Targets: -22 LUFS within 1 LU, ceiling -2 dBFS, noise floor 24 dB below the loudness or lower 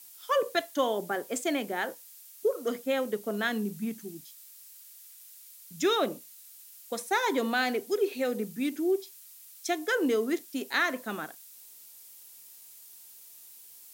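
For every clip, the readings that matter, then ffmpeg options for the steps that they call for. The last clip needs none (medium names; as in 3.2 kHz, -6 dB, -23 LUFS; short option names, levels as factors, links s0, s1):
noise floor -51 dBFS; noise floor target -54 dBFS; loudness -30.0 LUFS; peak level -13.0 dBFS; loudness target -22.0 LUFS
-> -af "afftdn=nr=6:nf=-51"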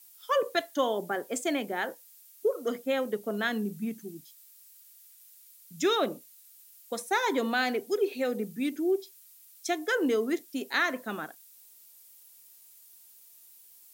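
noise floor -56 dBFS; loudness -30.0 LUFS; peak level -13.0 dBFS; loudness target -22.0 LUFS
-> -af "volume=2.51"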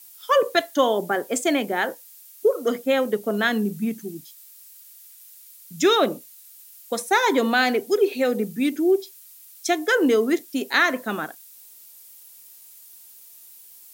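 loudness -22.0 LUFS; peak level -5.0 dBFS; noise floor -48 dBFS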